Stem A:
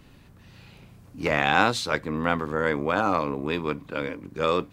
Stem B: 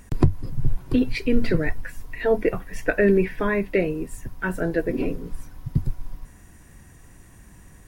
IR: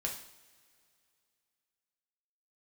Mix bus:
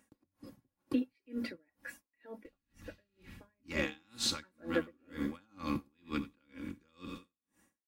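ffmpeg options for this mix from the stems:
-filter_complex "[0:a]equalizer=frequency=620:width_type=o:width=1:gain=-12.5,acrossover=split=270|3000[link_01][link_02][link_03];[link_02]acompressor=threshold=-40dB:ratio=2[link_04];[link_01][link_04][link_03]amix=inputs=3:normalize=0,adelay=2450,volume=0.5dB,asplit=2[link_05][link_06];[link_06]volume=-14.5dB[link_07];[1:a]highpass=200,agate=range=-11dB:threshold=-46dB:ratio=16:detection=peak,alimiter=limit=-17dB:level=0:latency=1:release=459,volume=6.5dB,afade=type=out:start_time=2.2:duration=0.2:silence=0.281838,afade=type=in:start_time=3.65:duration=0.34:silence=0.223872,asplit=2[link_08][link_09];[link_09]apad=whole_len=316381[link_10];[link_05][link_10]sidechaincompress=threshold=-36dB:ratio=8:attack=16:release=478[link_11];[link_07]aecho=0:1:89|178|267|356|445|534:1|0.46|0.212|0.0973|0.0448|0.0206[link_12];[link_11][link_08][link_12]amix=inputs=3:normalize=0,aecho=1:1:3.6:0.68,aeval=exprs='val(0)*pow(10,-40*(0.5-0.5*cos(2*PI*2.1*n/s))/20)':channel_layout=same"

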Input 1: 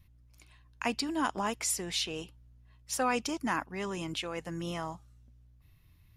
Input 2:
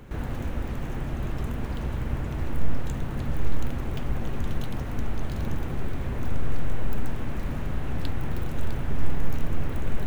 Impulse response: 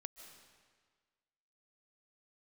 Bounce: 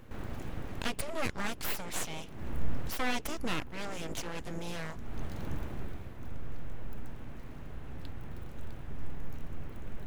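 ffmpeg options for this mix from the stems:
-filter_complex "[0:a]aeval=exprs='val(0)+0.00282*(sin(2*PI*60*n/s)+sin(2*PI*2*60*n/s)/2+sin(2*PI*3*60*n/s)/3+sin(2*PI*4*60*n/s)/4+sin(2*PI*5*60*n/s)/5)':channel_layout=same,volume=0dB,asplit=2[link_01][link_02];[1:a]volume=-5dB,afade=type=out:start_time=5.59:duration=0.55:silence=0.375837[link_03];[link_02]apad=whole_len=443910[link_04];[link_03][link_04]sidechaincompress=threshold=-48dB:ratio=5:attack=8.9:release=308[link_05];[link_01][link_05]amix=inputs=2:normalize=0,aeval=exprs='abs(val(0))':channel_layout=same"

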